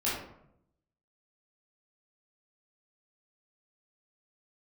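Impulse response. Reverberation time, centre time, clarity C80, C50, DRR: 0.75 s, 57 ms, 5.5 dB, 1.5 dB, -9.0 dB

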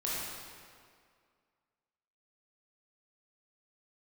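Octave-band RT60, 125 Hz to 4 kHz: 1.8 s, 2.1 s, 2.1 s, 2.1 s, 1.9 s, 1.6 s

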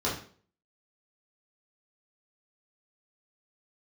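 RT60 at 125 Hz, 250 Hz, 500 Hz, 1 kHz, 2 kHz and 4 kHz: 0.50 s, 0.50 s, 0.50 s, 0.45 s, 0.40 s, 0.40 s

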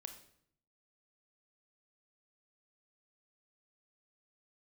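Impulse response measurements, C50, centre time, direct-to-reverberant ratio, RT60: 9.0 dB, 13 ms, 6.5 dB, 0.65 s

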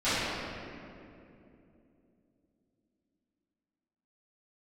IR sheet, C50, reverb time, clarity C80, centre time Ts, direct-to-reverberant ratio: -5.0 dB, 2.8 s, -2.5 dB, 180 ms, -18.5 dB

